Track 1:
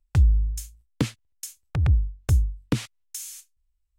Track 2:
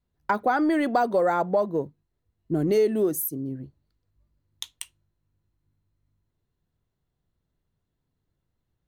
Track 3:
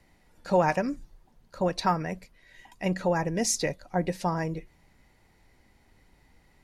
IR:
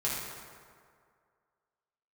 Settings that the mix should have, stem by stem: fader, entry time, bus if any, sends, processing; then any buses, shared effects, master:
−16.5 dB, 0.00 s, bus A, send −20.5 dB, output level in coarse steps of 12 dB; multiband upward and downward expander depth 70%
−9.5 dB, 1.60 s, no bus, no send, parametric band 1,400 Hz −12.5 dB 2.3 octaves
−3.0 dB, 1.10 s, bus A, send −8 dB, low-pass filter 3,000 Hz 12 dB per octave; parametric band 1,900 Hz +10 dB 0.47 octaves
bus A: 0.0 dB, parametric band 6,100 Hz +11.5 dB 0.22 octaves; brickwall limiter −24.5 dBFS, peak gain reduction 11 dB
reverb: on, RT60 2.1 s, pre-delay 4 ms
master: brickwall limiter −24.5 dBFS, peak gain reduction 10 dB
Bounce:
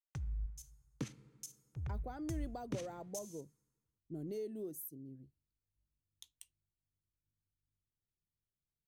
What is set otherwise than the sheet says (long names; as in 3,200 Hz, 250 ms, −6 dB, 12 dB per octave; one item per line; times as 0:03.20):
stem 2 −9.5 dB → −17.5 dB
stem 3: muted